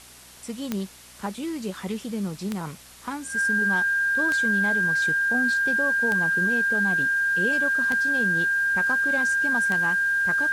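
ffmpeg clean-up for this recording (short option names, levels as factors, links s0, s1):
-af "adeclick=t=4,bandreject=f=61.5:t=h:w=4,bandreject=f=123:t=h:w=4,bandreject=f=184.5:t=h:w=4,bandreject=f=246:t=h:w=4,bandreject=f=1600:w=30,afftdn=nr=27:nf=-45"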